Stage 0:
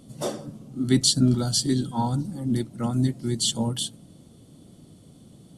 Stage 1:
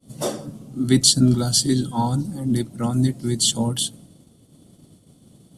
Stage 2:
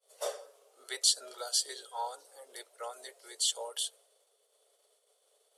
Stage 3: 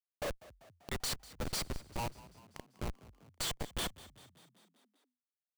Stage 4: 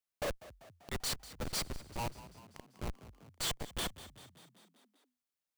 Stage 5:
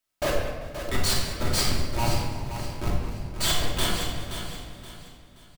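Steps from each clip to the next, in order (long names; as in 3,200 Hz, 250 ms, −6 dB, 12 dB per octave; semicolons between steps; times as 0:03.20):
downward expander −44 dBFS; high-shelf EQ 9,400 Hz +7 dB; level +3.5 dB
Chebyshev high-pass with heavy ripple 420 Hz, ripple 3 dB; level −8 dB
comparator with hysteresis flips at −33 dBFS; echo with shifted repeats 195 ms, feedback 62%, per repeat +41 Hz, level −19 dB; level +3 dB
brickwall limiter −36 dBFS, peak gain reduction 7 dB; level +3 dB
repeating echo 525 ms, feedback 33%, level −9.5 dB; rectangular room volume 1,100 cubic metres, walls mixed, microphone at 2.8 metres; level +7 dB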